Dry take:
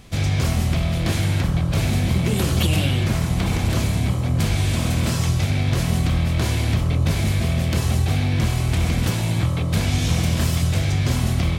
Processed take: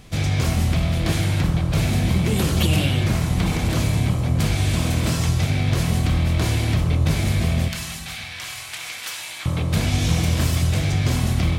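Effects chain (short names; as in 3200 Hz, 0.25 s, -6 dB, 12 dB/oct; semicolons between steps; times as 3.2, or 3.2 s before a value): 7.68–9.46 HPF 1400 Hz 12 dB/oct; reverb RT60 1.5 s, pre-delay 6 ms, DRR 11 dB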